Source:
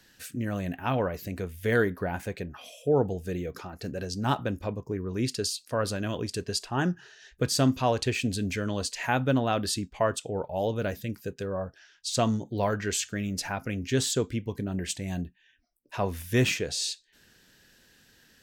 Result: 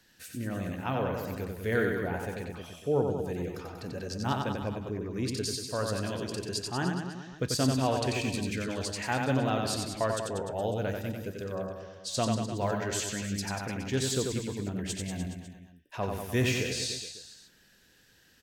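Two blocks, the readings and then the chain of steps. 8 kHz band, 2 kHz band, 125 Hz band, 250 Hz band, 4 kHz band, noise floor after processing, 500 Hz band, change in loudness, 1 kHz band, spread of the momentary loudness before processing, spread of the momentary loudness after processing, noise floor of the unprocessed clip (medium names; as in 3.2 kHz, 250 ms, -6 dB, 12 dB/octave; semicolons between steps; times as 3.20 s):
-2.5 dB, -2.5 dB, -2.0 dB, -2.5 dB, -2.5 dB, -62 dBFS, -2.5 dB, -2.5 dB, -2.5 dB, 10 LU, 10 LU, -64 dBFS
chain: reverse bouncing-ball echo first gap 90 ms, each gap 1.1×, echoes 5; trim -4.5 dB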